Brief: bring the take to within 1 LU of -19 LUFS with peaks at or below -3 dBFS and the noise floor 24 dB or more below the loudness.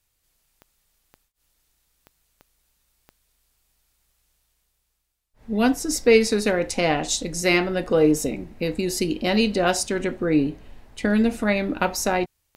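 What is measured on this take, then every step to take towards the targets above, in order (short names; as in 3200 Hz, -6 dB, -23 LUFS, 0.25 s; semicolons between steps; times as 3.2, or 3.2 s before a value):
clicks 8; loudness -22.0 LUFS; peak -5.0 dBFS; loudness target -19.0 LUFS
-> de-click; gain +3 dB; limiter -3 dBFS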